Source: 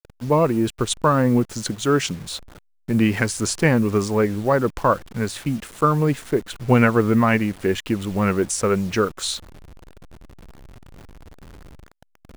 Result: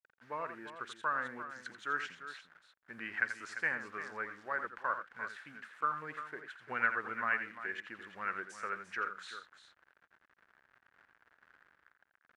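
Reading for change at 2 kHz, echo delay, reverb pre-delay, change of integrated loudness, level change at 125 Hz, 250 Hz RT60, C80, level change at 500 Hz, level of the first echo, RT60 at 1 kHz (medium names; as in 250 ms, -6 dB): -7.0 dB, 85 ms, no reverb, -17.5 dB, -38.0 dB, no reverb, no reverb, -26.5 dB, -10.0 dB, no reverb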